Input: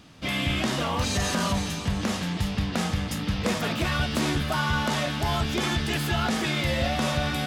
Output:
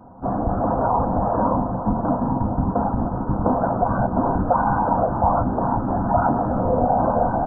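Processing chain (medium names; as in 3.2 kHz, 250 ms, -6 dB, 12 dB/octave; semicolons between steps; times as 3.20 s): steep low-pass 1.2 kHz 72 dB/octave; tilt EQ +3 dB/octave; comb 1.3 ms, depth 86%; in parallel at +2.5 dB: peak limiter -25.5 dBFS, peak gain reduction 10.5 dB; on the sum: whisper effect; on a send at -6 dB: reverberation RT60 0.15 s, pre-delay 3 ms; on the sum: trim +3.5 dB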